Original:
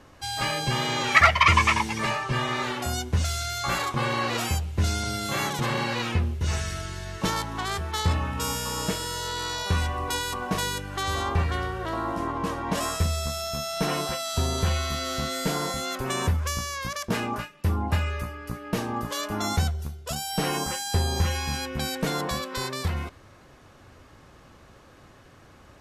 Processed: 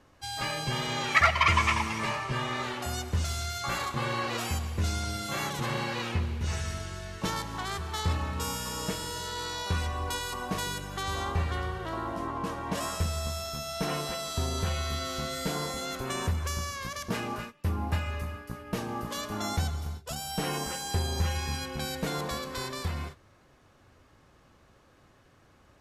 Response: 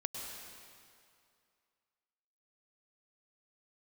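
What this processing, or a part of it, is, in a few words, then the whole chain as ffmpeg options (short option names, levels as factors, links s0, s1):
keyed gated reverb: -filter_complex "[0:a]asplit=3[s0][s1][s2];[1:a]atrim=start_sample=2205[s3];[s1][s3]afir=irnorm=-1:irlink=0[s4];[s2]apad=whole_len=1138081[s5];[s4][s5]sidechaingate=range=0.0224:threshold=0.0126:ratio=16:detection=peak,volume=0.596[s6];[s0][s6]amix=inputs=2:normalize=0,volume=0.376"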